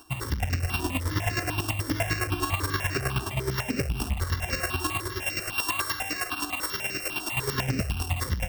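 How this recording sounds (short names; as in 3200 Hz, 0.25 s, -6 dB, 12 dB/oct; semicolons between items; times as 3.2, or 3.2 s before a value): a buzz of ramps at a fixed pitch in blocks of 16 samples; chopped level 9.5 Hz, depth 60%, duty 25%; notches that jump at a steady rate 10 Hz 560–3300 Hz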